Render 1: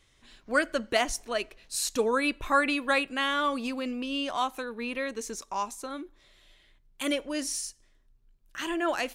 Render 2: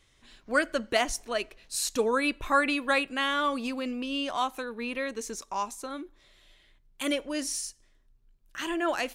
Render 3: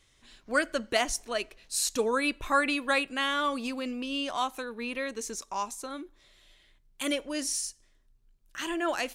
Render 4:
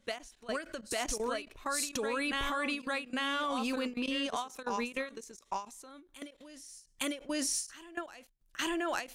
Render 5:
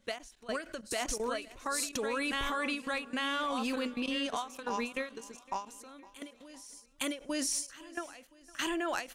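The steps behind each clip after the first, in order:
nothing audible
bell 7800 Hz +3.5 dB 2 oct; gain -1.5 dB
reverse echo 0.852 s -7 dB; level quantiser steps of 18 dB; ending taper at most 190 dB/s; gain +3 dB
feedback echo 0.51 s, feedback 56%, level -21.5 dB

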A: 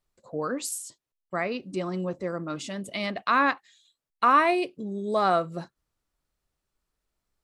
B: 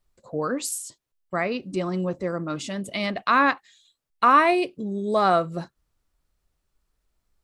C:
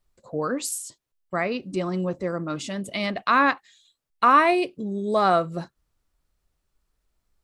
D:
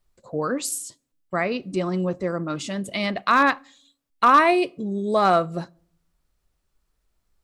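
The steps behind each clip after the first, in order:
low shelf 79 Hz +8.5 dB; gain +3 dB
nothing audible
hard clip -10 dBFS, distortion -27 dB; on a send at -22.5 dB: reverb RT60 0.60 s, pre-delay 5 ms; on the sum: gain +1.5 dB

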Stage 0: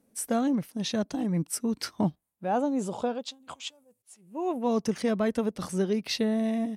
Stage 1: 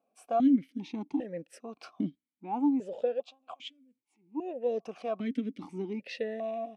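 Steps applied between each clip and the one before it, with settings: vowel sequencer 2.5 Hz; gain +6 dB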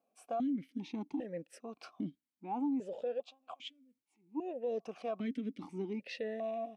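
limiter -26 dBFS, peak gain reduction 10 dB; gain -3 dB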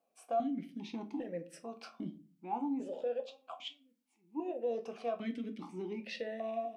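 low shelf 250 Hz -7 dB; on a send at -6 dB: reverb RT60 0.35 s, pre-delay 6 ms; on the sum: gain +1 dB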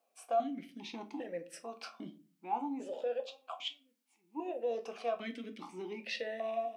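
HPF 700 Hz 6 dB/oct; gain +5 dB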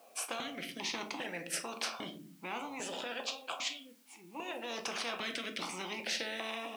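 spectral compressor 4:1

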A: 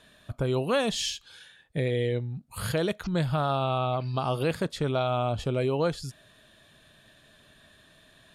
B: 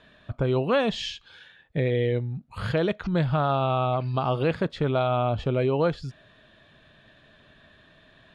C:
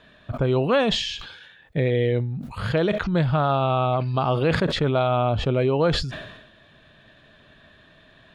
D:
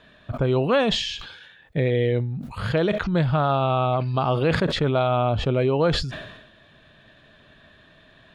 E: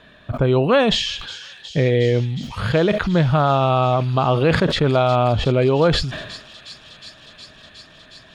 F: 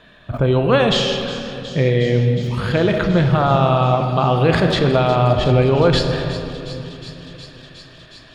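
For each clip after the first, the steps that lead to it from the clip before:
LPF 3100 Hz 12 dB/oct; gain +3 dB
sustainer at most 56 dB/s; gain +2.5 dB
nothing audible
thin delay 0.363 s, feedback 83%, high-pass 3600 Hz, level -11 dB; gain +4.5 dB
reverb RT60 3.2 s, pre-delay 6 ms, DRR 4.5 dB

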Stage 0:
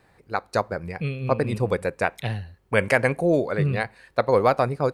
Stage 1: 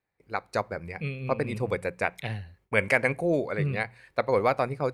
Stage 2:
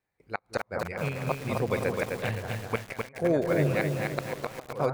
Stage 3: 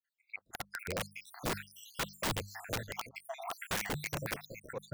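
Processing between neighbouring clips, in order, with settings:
notches 60/120/180 Hz; gate with hold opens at -47 dBFS; bell 2200 Hz +7 dB 0.35 oct; gain -5 dB
on a send: analogue delay 0.204 s, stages 2048, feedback 61%, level -9 dB; on the sum: flipped gate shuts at -13 dBFS, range -27 dB; lo-fi delay 0.258 s, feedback 55%, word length 7-bit, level -3 dB
random spectral dropouts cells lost 77%; notches 50/100/150/200 Hz; wrapped overs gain 29 dB; gain +1 dB

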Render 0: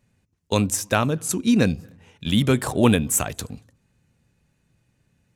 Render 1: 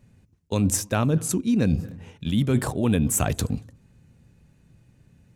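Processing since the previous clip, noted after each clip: low shelf 480 Hz +8.5 dB; reverse; compressor 8:1, threshold -21 dBFS, peak gain reduction 16 dB; reverse; gain +2.5 dB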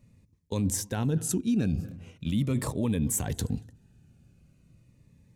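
limiter -15.5 dBFS, peak gain reduction 7.5 dB; cascading phaser falling 0.41 Hz; gain -3 dB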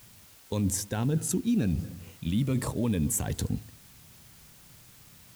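added noise white -55 dBFS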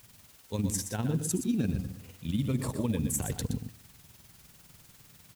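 AM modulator 20 Hz, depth 45%; echo 0.12 s -9 dB

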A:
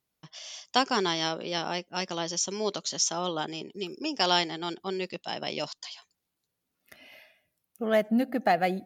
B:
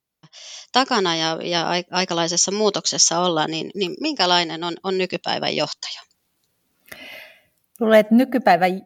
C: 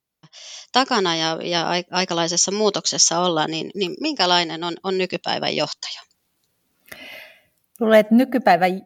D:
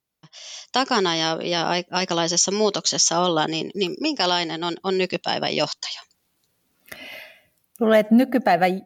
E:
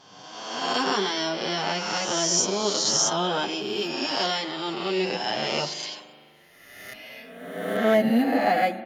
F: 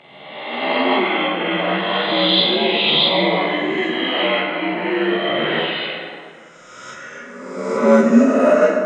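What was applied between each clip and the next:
AGC gain up to 15 dB; gain -1 dB
nothing audible
limiter -8 dBFS, peak gain reduction 6 dB
spectral swells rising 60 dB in 1.42 s; spring tank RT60 2.3 s, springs 40 ms, chirp 80 ms, DRR 13 dB; endless flanger 8.1 ms +1.2 Hz; gain -4.5 dB
inharmonic rescaling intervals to 83%; plate-style reverb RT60 2.1 s, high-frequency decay 0.6×, DRR 1.5 dB; gain +7 dB

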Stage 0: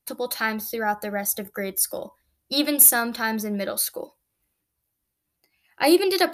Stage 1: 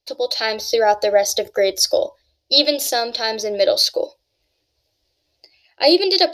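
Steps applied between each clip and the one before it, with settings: EQ curve 110 Hz 0 dB, 200 Hz -17 dB, 320 Hz +1 dB, 610 Hz +10 dB, 1200 Hz -9 dB, 4900 Hz +14 dB, 9400 Hz -15 dB; AGC gain up to 11 dB; gain -1 dB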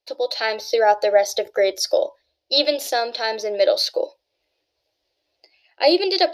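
tone controls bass -14 dB, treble -9 dB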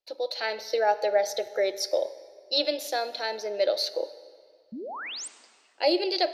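painted sound rise, 4.72–5.28, 200–9300 Hz -29 dBFS; reverb RT60 2.0 s, pre-delay 29 ms, DRR 14.5 dB; gain -7.5 dB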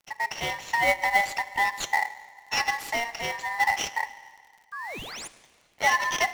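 in parallel at -4 dB: sample-rate reducer 3500 Hz, jitter 20%; on the sum: ring modulator 1400 Hz; crackle 24/s -41 dBFS

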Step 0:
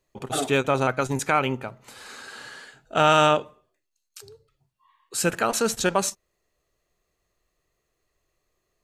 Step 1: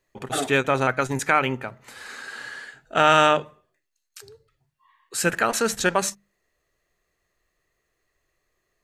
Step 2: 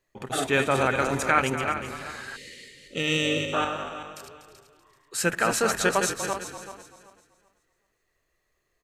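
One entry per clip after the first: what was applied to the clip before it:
bell 1800 Hz +7.5 dB 0.59 oct; notches 50/100/150/200 Hz
regenerating reverse delay 0.192 s, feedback 49%, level -5.5 dB; frequency-shifting echo 0.243 s, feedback 30%, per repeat -52 Hz, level -12 dB; spectral gain 2.36–3.53, 600–1800 Hz -28 dB; gain -2.5 dB

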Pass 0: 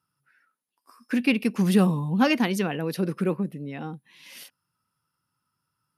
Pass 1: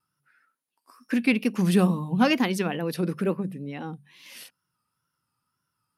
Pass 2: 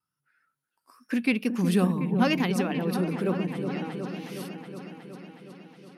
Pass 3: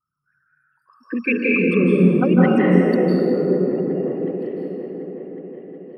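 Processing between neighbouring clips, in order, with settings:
notches 50/100/150/200 Hz; wow and flutter 77 cents
AGC gain up to 5.5 dB; on a send: repeats that get brighter 0.367 s, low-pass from 750 Hz, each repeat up 1 oct, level -6 dB; on the sum: gain -7.5 dB
formant sharpening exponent 3; reverb RT60 2.7 s, pre-delay 0.143 s, DRR -5.5 dB; gain +2.5 dB

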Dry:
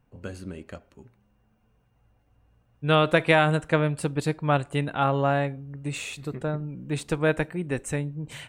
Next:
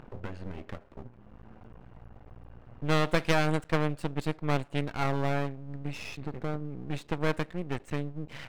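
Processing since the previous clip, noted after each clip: low-pass opened by the level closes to 1600 Hz, open at -18 dBFS; half-wave rectifier; upward compressor, threshold -27 dBFS; gain -2 dB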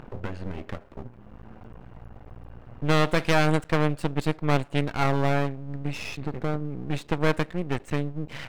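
maximiser +12.5 dB; gain -7 dB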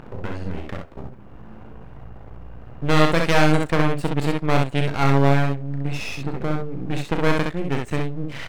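early reflections 36 ms -9 dB, 65 ms -3.5 dB; gain +2.5 dB

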